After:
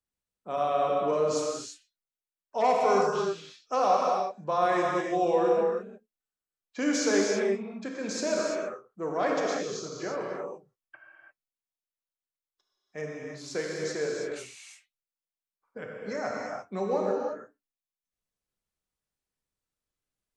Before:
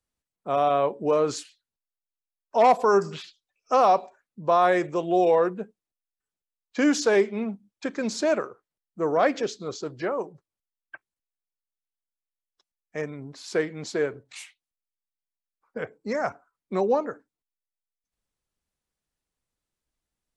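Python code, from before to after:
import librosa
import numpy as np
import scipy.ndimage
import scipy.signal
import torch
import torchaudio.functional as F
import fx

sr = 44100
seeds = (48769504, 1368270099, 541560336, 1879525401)

y = fx.dynamic_eq(x, sr, hz=6200.0, q=1.6, threshold_db=-52.0, ratio=4.0, max_db=6)
y = fx.rev_gated(y, sr, seeds[0], gate_ms=370, shape='flat', drr_db=-2.5)
y = y * 10.0 ** (-8.0 / 20.0)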